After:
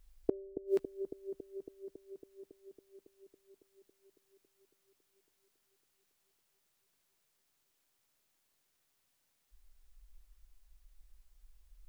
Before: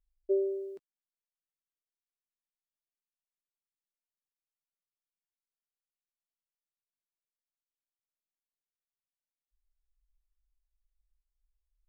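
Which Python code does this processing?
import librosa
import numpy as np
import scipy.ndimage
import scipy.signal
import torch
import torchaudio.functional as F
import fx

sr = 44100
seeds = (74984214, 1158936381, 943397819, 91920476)

p1 = fx.gate_flip(x, sr, shuts_db=-33.0, range_db=-37)
p2 = p1 + fx.echo_wet_lowpass(p1, sr, ms=277, feedback_pct=75, hz=540.0, wet_db=-9.0, dry=0)
y = p2 * 10.0 ** (18.0 / 20.0)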